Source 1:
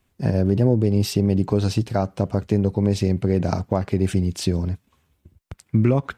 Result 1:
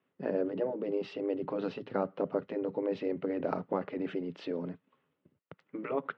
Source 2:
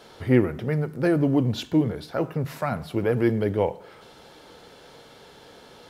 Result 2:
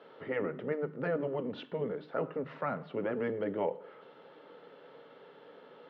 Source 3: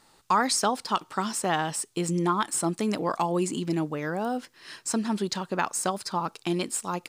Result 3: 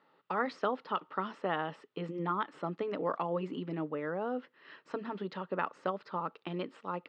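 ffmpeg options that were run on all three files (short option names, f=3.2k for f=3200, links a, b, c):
-af "afftfilt=real='re*lt(hypot(re,im),0.562)':imag='im*lt(hypot(re,im),0.562)':win_size=1024:overlap=0.75,highpass=f=200:w=0.5412,highpass=f=200:w=1.3066,equalizer=f=220:t=q:w=4:g=-10,equalizer=f=340:t=q:w=4:g=-8,equalizer=f=730:t=q:w=4:g=-9,equalizer=f=1k:t=q:w=4:g=-6,equalizer=f=1.6k:t=q:w=4:g=-7,equalizer=f=2.3k:t=q:w=4:g=-9,lowpass=f=2.4k:w=0.5412,lowpass=f=2.4k:w=1.3066"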